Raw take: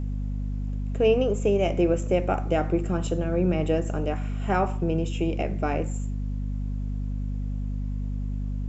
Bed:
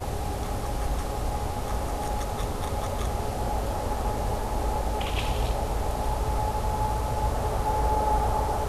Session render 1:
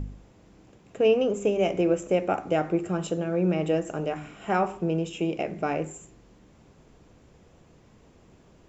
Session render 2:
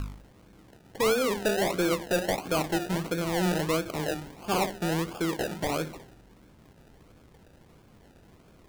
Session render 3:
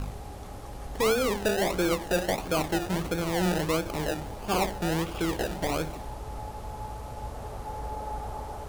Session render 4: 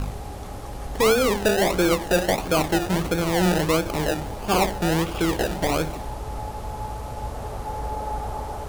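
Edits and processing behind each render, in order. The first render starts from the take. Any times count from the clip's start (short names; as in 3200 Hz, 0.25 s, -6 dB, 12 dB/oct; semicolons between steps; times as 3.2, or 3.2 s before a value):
de-hum 50 Hz, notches 8
decimation with a swept rate 32×, swing 60% 1.5 Hz; soft clip -20 dBFS, distortion -14 dB
add bed -11 dB
gain +6 dB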